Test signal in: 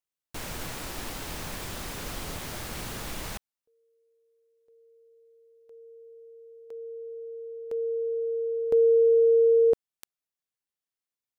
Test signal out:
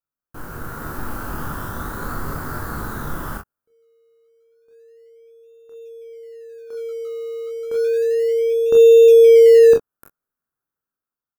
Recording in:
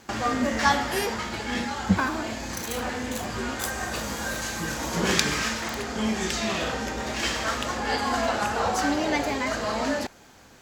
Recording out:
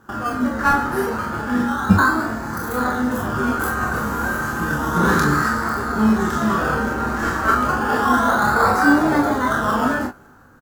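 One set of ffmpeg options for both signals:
ffmpeg -i in.wav -filter_complex "[0:a]firequalizer=gain_entry='entry(280,0);entry(620,-6);entry(1400,8);entry(2300,-22);entry(13000,-3)':delay=0.05:min_phase=1,dynaudnorm=framelen=160:gausssize=9:maxgain=7dB,asplit=2[link_01][link_02];[link_02]acrusher=samples=20:mix=1:aa=0.000001:lfo=1:lforange=12:lforate=0.31,volume=-11.5dB[link_03];[link_01][link_03]amix=inputs=2:normalize=0,asplit=2[link_04][link_05];[link_05]adelay=20,volume=-10.5dB[link_06];[link_04][link_06]amix=inputs=2:normalize=0,aecho=1:1:28|41:0.596|0.501,volume=-1dB" out.wav

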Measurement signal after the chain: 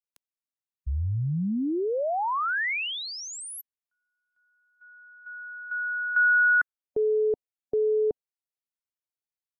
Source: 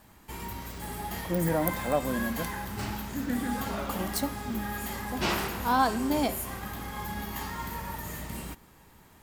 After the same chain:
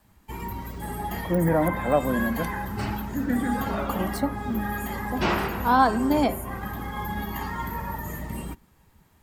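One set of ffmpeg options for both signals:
ffmpeg -i in.wav -filter_complex "[0:a]afftdn=noise_reduction=12:noise_floor=-43,acrossover=split=270|2500[link_01][link_02][link_03];[link_03]acompressor=threshold=-44dB:ratio=6[link_04];[link_01][link_02][link_04]amix=inputs=3:normalize=0,volume=5.5dB" out.wav

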